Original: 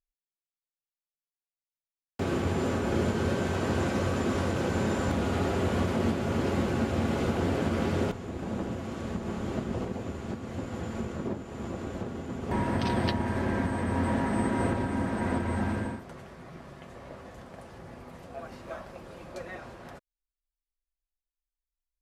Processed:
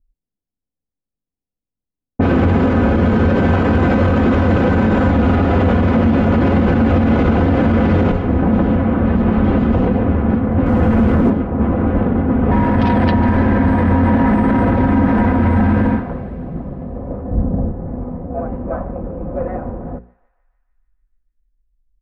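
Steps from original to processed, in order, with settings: low-pass 2.3 kHz 12 dB/octave; bass shelf 170 Hz +9 dB; hum notches 60/120/180/240/300/360/420/480/540 Hz; comb 4 ms, depth 43%; level-controlled noise filter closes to 320 Hz, open at -22 dBFS; 17.31–17.72 s: bass shelf 380 Hz +11.5 dB; thinning echo 148 ms, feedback 77%, high-pass 1 kHz, level -19.5 dB; 10.66–11.30 s: waveshaping leveller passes 1; loudness maximiser +23 dB; trim -5 dB

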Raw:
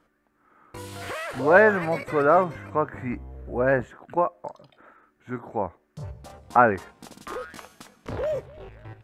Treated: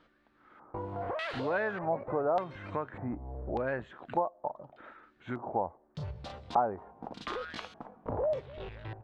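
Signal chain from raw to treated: compression 3:1, threshold -35 dBFS, peak gain reduction 18 dB; LFO low-pass square 0.84 Hz 820–3800 Hz

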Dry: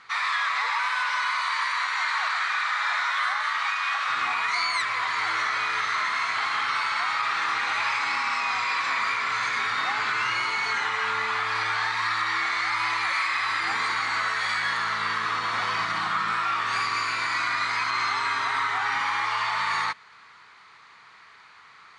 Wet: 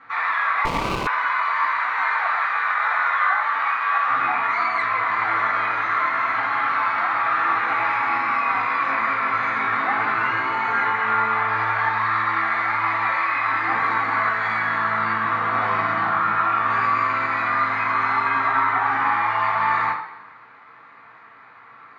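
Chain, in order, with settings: Bessel low-pass 810 Hz, order 2; bass shelf 240 Hz -5.5 dB; reverberation RT60 1.0 s, pre-delay 3 ms, DRR -5 dB; 0.65–1.07 s: sliding maximum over 17 samples; trim +8.5 dB

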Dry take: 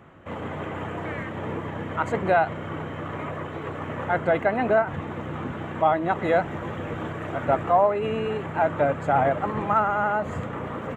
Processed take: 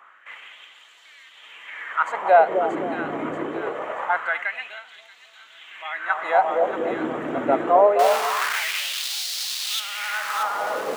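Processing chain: 7.99–9.80 s: one-bit comparator; two-band feedback delay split 1 kHz, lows 259 ms, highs 631 ms, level -6 dB; LFO high-pass sine 0.24 Hz 270–4300 Hz

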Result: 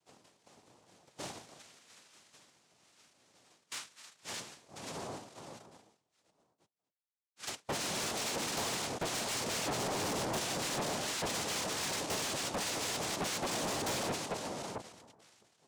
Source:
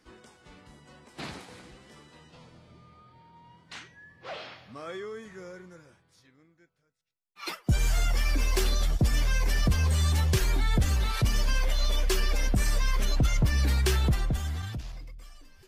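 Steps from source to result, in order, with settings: 1.59–4.40 s: tilt shelf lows -8.5 dB; power-law waveshaper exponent 1.4; noise-vocoded speech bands 2; saturation -36 dBFS, distortion -4 dB; trim +3.5 dB

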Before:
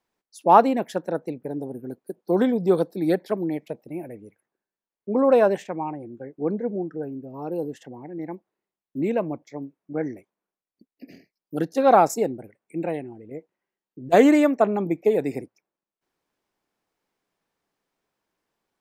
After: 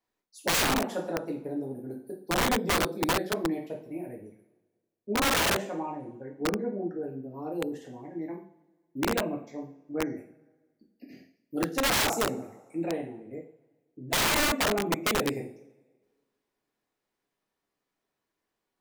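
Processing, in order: two-slope reverb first 0.44 s, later 1.5 s, from -20 dB, DRR -2 dB; integer overflow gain 12 dB; trim -8 dB

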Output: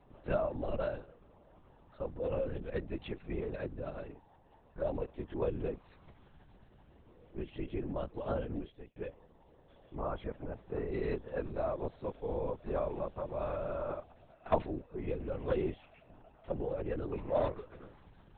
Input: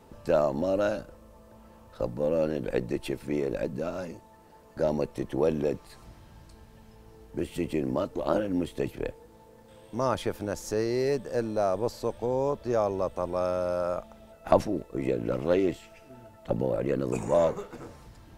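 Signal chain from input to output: coarse spectral quantiser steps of 15 dB; LPC vocoder at 8 kHz whisper; 8.44–8.96 s: fade out; 9.95–10.92 s: distance through air 420 m; trim -8 dB

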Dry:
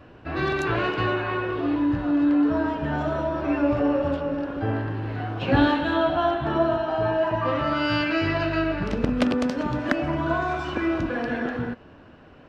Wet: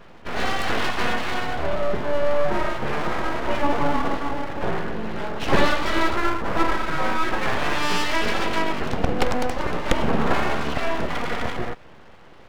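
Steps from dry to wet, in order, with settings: 6.16–6.57 s: low-pass 1.2 kHz; 9.91–10.75 s: bass shelf 160 Hz +11 dB; full-wave rectifier; trim +4 dB

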